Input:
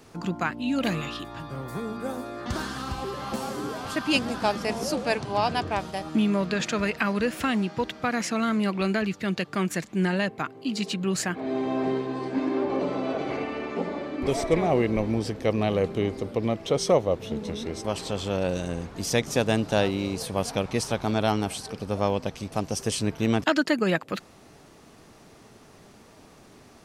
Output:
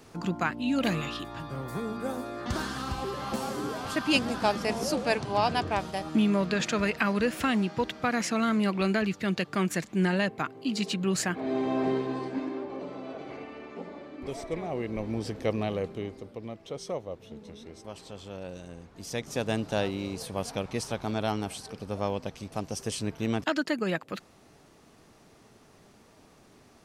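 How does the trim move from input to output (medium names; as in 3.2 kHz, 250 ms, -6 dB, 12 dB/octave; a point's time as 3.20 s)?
12.13 s -1 dB
12.68 s -11 dB
14.72 s -11 dB
15.40 s -3 dB
16.40 s -13.5 dB
18.85 s -13.5 dB
19.51 s -5.5 dB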